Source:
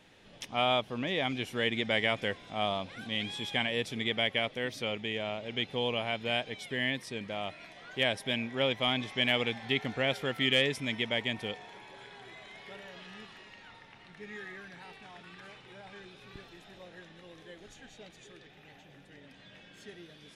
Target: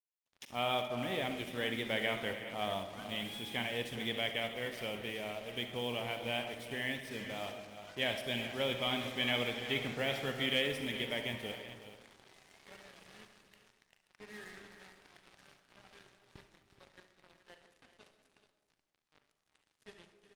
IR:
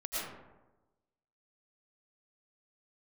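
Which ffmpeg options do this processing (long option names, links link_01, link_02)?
-filter_complex "[0:a]acrusher=bits=6:mix=0:aa=0.5,aecho=1:1:42|58|66|71|369|427:0.211|0.168|0.119|0.237|0.224|0.237,asplit=2[link_01][link_02];[1:a]atrim=start_sample=2205[link_03];[link_02][link_03]afir=irnorm=-1:irlink=0,volume=-12dB[link_04];[link_01][link_04]amix=inputs=2:normalize=0,volume=-7dB" -ar 48000 -c:a libopus -b:a 32k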